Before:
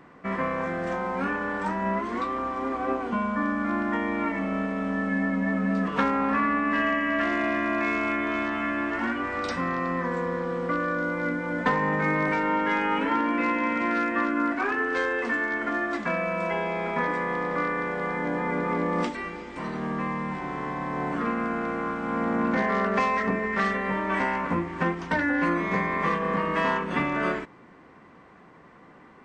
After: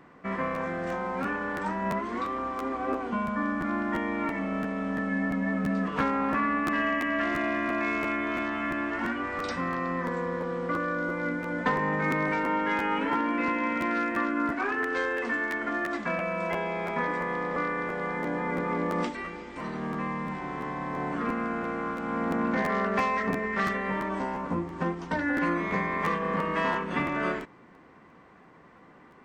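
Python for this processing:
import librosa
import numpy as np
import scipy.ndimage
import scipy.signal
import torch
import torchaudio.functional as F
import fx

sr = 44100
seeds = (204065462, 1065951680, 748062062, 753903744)

y = fx.peak_eq(x, sr, hz=2100.0, db=fx.line((24.08, -13.5), (25.25, -4.5)), octaves=1.3, at=(24.08, 25.25), fade=0.02)
y = fx.buffer_crackle(y, sr, first_s=0.54, period_s=0.34, block=512, kind='repeat')
y = F.gain(torch.from_numpy(y), -2.5).numpy()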